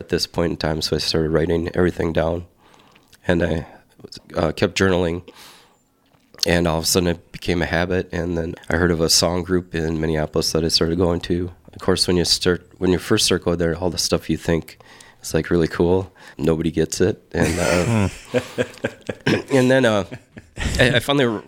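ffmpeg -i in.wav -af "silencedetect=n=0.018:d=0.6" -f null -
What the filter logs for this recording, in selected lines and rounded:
silence_start: 5.55
silence_end: 6.34 | silence_duration: 0.79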